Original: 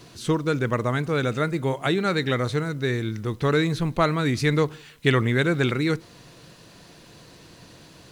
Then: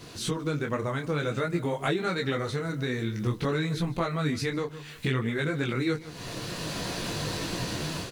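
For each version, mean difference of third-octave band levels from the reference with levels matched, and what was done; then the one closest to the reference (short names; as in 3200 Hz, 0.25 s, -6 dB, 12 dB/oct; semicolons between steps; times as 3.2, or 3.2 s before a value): 7.0 dB: AGC gain up to 14.5 dB; on a send: echo 0.152 s -21 dB; on the sum: compressor 5:1, threshold -30 dBFS, peak gain reduction 19.5 dB; detuned doubles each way 19 cents; gain +6 dB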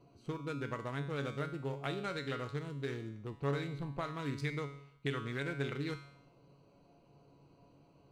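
4.5 dB: Wiener smoothing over 25 samples; low shelf 480 Hz -5.5 dB; compressor, threshold -25 dBFS, peak gain reduction 8 dB; resonator 140 Hz, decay 0.73 s, harmonics all, mix 80%; gain +2 dB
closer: second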